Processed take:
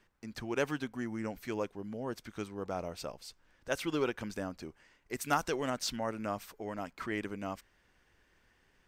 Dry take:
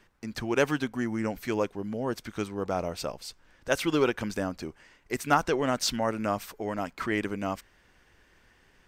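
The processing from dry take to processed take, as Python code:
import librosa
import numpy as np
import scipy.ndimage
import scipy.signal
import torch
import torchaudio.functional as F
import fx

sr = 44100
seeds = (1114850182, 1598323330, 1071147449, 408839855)

y = fx.high_shelf(x, sr, hz=4200.0, db=9.5, at=(5.21, 5.7))
y = y * librosa.db_to_amplitude(-7.5)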